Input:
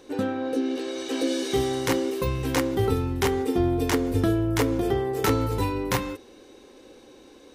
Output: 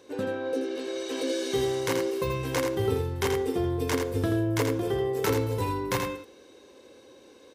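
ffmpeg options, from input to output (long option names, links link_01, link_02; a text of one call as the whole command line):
ffmpeg -i in.wav -filter_complex "[0:a]highpass=90,aecho=1:1:1.9:0.3,asplit=2[link_01][link_02];[link_02]aecho=0:1:82:0.531[link_03];[link_01][link_03]amix=inputs=2:normalize=0,volume=-4dB" out.wav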